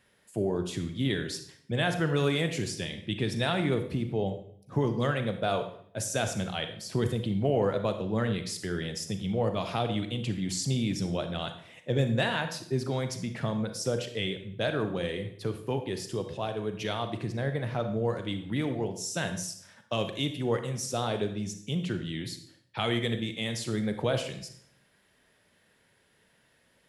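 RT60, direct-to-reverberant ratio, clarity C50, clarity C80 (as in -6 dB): 0.60 s, 7.5 dB, 9.0 dB, 12.5 dB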